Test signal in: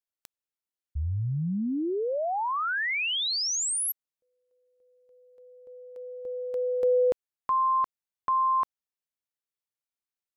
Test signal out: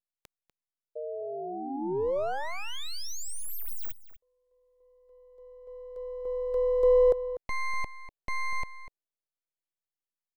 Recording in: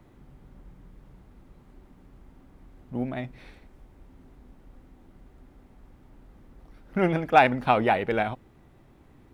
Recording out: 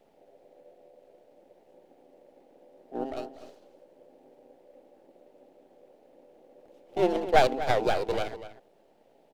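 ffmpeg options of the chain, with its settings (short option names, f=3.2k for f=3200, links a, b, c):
-filter_complex "[0:a]acrossover=split=430|540[a][b][c];[a]aeval=exprs='val(0)*sin(2*PI*540*n/s)':c=same[d];[b]dynaudnorm=f=350:g=9:m=15dB[e];[c]aeval=exprs='abs(val(0))':c=same[f];[d][e][f]amix=inputs=3:normalize=0,asplit=2[g][h];[h]adelay=244.9,volume=-13dB,highshelf=f=4k:g=-5.51[i];[g][i]amix=inputs=2:normalize=0,volume=-4.5dB"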